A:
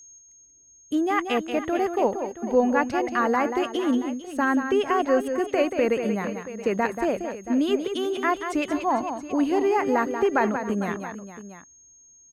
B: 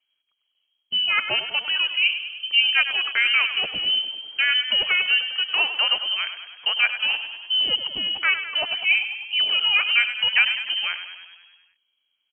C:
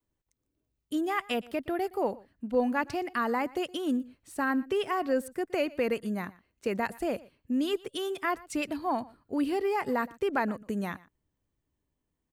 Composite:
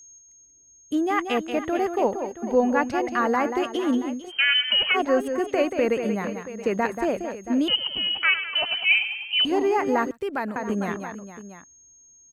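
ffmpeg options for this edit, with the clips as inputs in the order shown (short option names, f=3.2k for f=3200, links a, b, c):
-filter_complex "[1:a]asplit=2[a][b];[0:a]asplit=4[c][d][e][f];[c]atrim=end=4.32[g];[a]atrim=start=4.28:end=4.97[h];[d]atrim=start=4.93:end=7.682[i];[b]atrim=start=7.678:end=9.452[j];[e]atrim=start=9.448:end=10.112[k];[2:a]atrim=start=10.108:end=10.562[l];[f]atrim=start=10.558[m];[g][h]acrossfade=d=0.04:c1=tri:c2=tri[n];[n][i]acrossfade=d=0.04:c1=tri:c2=tri[o];[o][j]acrossfade=d=0.004:c1=hsin:c2=hsin[p];[p][k]acrossfade=d=0.004:c1=hsin:c2=hsin[q];[q][l]acrossfade=d=0.004:c1=hsin:c2=hsin[r];[r][m]acrossfade=d=0.004:c1=hsin:c2=hsin"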